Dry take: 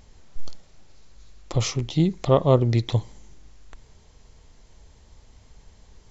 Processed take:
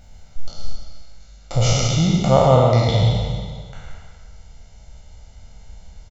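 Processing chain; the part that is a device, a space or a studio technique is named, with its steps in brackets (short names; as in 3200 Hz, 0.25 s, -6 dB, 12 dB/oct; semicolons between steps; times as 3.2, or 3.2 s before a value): spectral trails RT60 1.76 s; 1.66–2.72 bell 1100 Hz +5 dB 0.92 oct; microphone above a desk (comb 1.4 ms, depth 72%; reverb RT60 0.60 s, pre-delay 0.1 s, DRR 4.5 dB); gain -1 dB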